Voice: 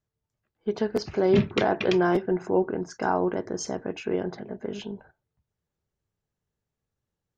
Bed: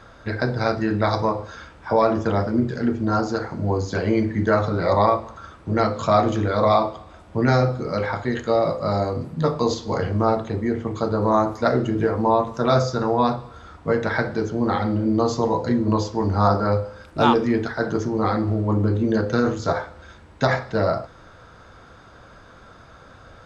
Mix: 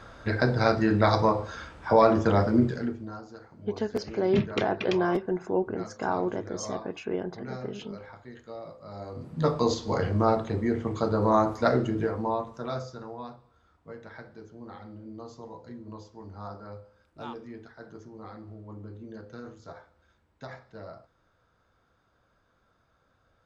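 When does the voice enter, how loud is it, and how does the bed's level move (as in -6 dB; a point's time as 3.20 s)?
3.00 s, -3.5 dB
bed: 2.65 s -1 dB
3.20 s -21.5 dB
8.88 s -21.5 dB
9.46 s -3.5 dB
11.73 s -3.5 dB
13.36 s -22.5 dB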